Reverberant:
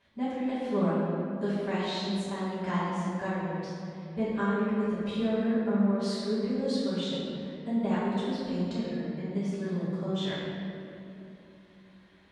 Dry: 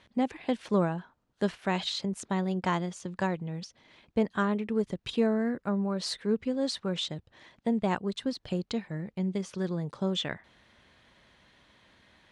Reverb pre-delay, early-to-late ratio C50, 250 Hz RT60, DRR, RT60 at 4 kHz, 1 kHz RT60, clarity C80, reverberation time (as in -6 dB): 5 ms, -3.0 dB, 4.1 s, -12.5 dB, 1.6 s, 2.6 s, -1.0 dB, 2.9 s